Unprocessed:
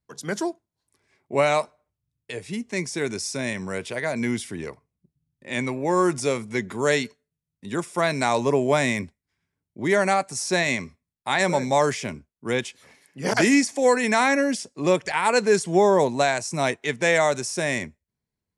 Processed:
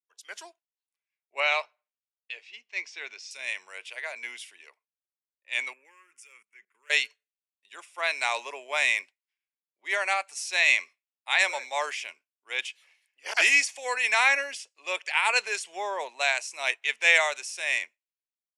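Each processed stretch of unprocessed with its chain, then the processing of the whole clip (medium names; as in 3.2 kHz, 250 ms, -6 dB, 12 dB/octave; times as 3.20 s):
1.40–3.31 s: low-pass 5.6 kHz 24 dB/octave + hum notches 50/100/150/200 Hz
5.73–6.90 s: hard clipper -16.5 dBFS + static phaser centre 1.7 kHz, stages 4 + level held to a coarse grid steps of 18 dB
whole clip: Bessel high-pass 880 Hz, order 4; peaking EQ 2.7 kHz +13 dB 0.74 oct; three bands expanded up and down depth 70%; trim -6 dB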